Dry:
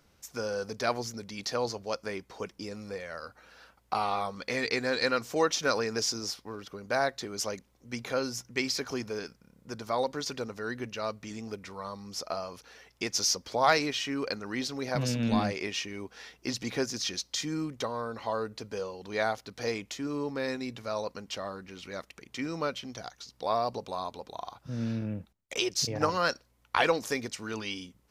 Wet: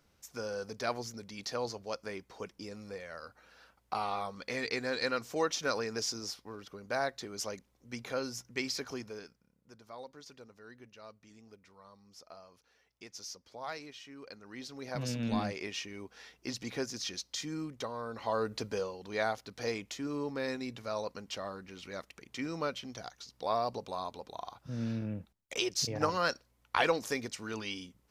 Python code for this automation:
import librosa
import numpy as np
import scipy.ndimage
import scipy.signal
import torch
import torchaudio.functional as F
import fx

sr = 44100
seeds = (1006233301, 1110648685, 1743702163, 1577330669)

y = fx.gain(x, sr, db=fx.line((8.85, -5.0), (9.79, -17.5), (14.16, -17.5), (15.1, -5.5), (17.99, -5.5), (18.61, 3.5), (18.99, -3.0)))